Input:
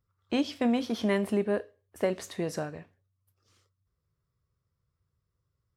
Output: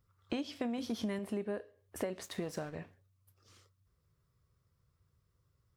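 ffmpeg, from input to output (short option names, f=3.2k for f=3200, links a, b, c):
-filter_complex "[0:a]asettb=1/sr,asplit=3[a][b][c];[a]atrim=end=0.784[d];[b]atrim=start=0.78:end=1.19,asetpts=PTS-STARTPTS,afade=t=in:d=0.004:c=qsin,afade=t=out:st=0.406:d=0.004:c=qsin,bass=f=250:g=7,treble=f=4k:g=6[e];[c]atrim=start=1.186[f];[d][e]acrossfade=d=0.004:c1=hsin:c2=qsin[g];[g][f]acrossfade=d=0.004:c1=qsin:c2=hsin,acompressor=threshold=-40dB:ratio=5,asettb=1/sr,asplit=3[h][i][j];[h]atrim=end=2.234[k];[i]atrim=start=2.23:end=2.75,asetpts=PTS-STARTPTS,afade=t=in:d=0.004:c=qsin,afade=t=out:st=0.516:d=0.004:c=qsin,aeval=exprs='sgn(val(0))*max(abs(val(0))-0.00133,0)':c=same[l];[j]atrim=start=2.746[m];[k][l]acrossfade=d=0.004:c1=hsin:c2=qsin[n];[n][m]acrossfade=d=0.004:c1=qsin:c2=hsin,volume=4.5dB"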